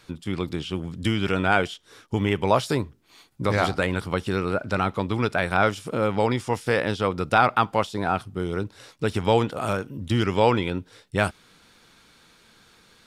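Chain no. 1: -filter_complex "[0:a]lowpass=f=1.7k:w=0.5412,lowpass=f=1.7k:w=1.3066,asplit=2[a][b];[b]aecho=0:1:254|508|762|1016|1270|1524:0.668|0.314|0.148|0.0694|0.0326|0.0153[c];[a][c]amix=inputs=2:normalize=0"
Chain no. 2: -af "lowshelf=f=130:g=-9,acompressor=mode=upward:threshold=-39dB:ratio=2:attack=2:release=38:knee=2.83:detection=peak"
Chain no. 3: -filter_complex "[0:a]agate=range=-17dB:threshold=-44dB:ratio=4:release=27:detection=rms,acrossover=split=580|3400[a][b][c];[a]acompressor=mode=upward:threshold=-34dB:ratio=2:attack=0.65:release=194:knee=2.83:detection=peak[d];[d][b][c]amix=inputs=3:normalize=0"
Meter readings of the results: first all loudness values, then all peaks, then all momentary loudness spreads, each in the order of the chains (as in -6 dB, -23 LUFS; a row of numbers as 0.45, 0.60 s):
-23.5, -25.5, -24.5 LUFS; -3.5, -4.5, -5.5 dBFS; 9, 10, 9 LU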